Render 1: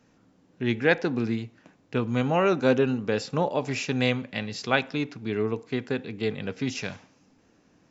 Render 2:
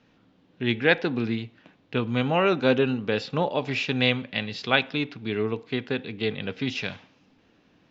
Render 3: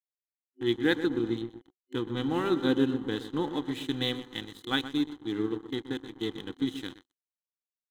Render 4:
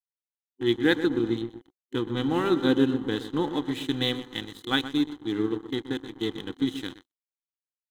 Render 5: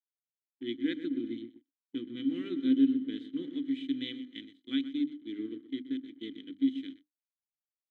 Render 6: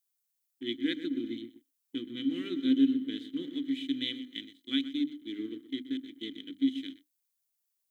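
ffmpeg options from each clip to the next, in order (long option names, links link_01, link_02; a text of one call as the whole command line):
ffmpeg -i in.wav -af "lowpass=frequency=3500:width_type=q:width=2.2" out.wav
ffmpeg -i in.wav -filter_complex "[0:a]asplit=2[link_01][link_02];[link_02]adelay=124,lowpass=frequency=1500:poles=1,volume=-9dB,asplit=2[link_03][link_04];[link_04]adelay=124,lowpass=frequency=1500:poles=1,volume=0.55,asplit=2[link_05][link_06];[link_06]adelay=124,lowpass=frequency=1500:poles=1,volume=0.55,asplit=2[link_07][link_08];[link_08]adelay=124,lowpass=frequency=1500:poles=1,volume=0.55,asplit=2[link_09][link_10];[link_10]adelay=124,lowpass=frequency=1500:poles=1,volume=0.55,asplit=2[link_11][link_12];[link_12]adelay=124,lowpass=frequency=1500:poles=1,volume=0.55[link_13];[link_03][link_05][link_07][link_09][link_11][link_13]amix=inputs=6:normalize=0[link_14];[link_01][link_14]amix=inputs=2:normalize=0,aeval=exprs='sgn(val(0))*max(abs(val(0))-0.0188,0)':channel_layout=same,superequalizer=6b=3.98:8b=0.282:12b=0.316:13b=1.58:14b=0.355,volume=-7dB" out.wav
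ffmpeg -i in.wav -af "agate=range=-33dB:threshold=-50dB:ratio=3:detection=peak,volume=3.5dB" out.wav
ffmpeg -i in.wav -filter_complex "[0:a]asplit=3[link_01][link_02][link_03];[link_01]bandpass=frequency=270:width_type=q:width=8,volume=0dB[link_04];[link_02]bandpass=frequency=2290:width_type=q:width=8,volume=-6dB[link_05];[link_03]bandpass=frequency=3010:width_type=q:width=8,volume=-9dB[link_06];[link_04][link_05][link_06]amix=inputs=3:normalize=0,bandreject=frequency=50:width_type=h:width=6,bandreject=frequency=100:width_type=h:width=6,bandreject=frequency=150:width_type=h:width=6,bandreject=frequency=200:width_type=h:width=6,bandreject=frequency=250:width_type=h:width=6,bandreject=frequency=300:width_type=h:width=6,agate=range=-33dB:threshold=-45dB:ratio=3:detection=peak" out.wav
ffmpeg -i in.wav -af "crystalizer=i=3.5:c=0" out.wav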